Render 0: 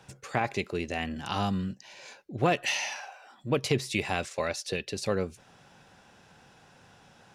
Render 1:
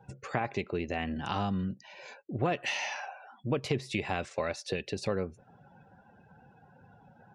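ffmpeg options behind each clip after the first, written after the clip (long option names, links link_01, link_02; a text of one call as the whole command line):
ffmpeg -i in.wav -af "afftdn=noise_reduction=23:noise_floor=-53,highshelf=frequency=4400:gain=-12,acompressor=threshold=-35dB:ratio=2,volume=3.5dB" out.wav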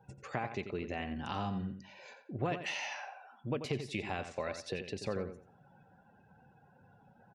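ffmpeg -i in.wav -filter_complex "[0:a]asplit=2[link_01][link_02];[link_02]adelay=88,lowpass=frequency=4500:poles=1,volume=-9dB,asplit=2[link_03][link_04];[link_04]adelay=88,lowpass=frequency=4500:poles=1,volume=0.25,asplit=2[link_05][link_06];[link_06]adelay=88,lowpass=frequency=4500:poles=1,volume=0.25[link_07];[link_01][link_03][link_05][link_07]amix=inputs=4:normalize=0,volume=-5.5dB" out.wav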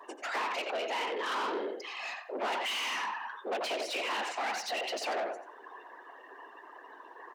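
ffmpeg -i in.wav -filter_complex "[0:a]afftfilt=real='hypot(re,im)*cos(2*PI*random(0))':imag='hypot(re,im)*sin(2*PI*random(1))':win_size=512:overlap=0.75,asplit=2[link_01][link_02];[link_02]highpass=frequency=720:poles=1,volume=30dB,asoftclip=type=tanh:threshold=-25.5dB[link_03];[link_01][link_03]amix=inputs=2:normalize=0,lowpass=frequency=3700:poles=1,volume=-6dB,afreqshift=200" out.wav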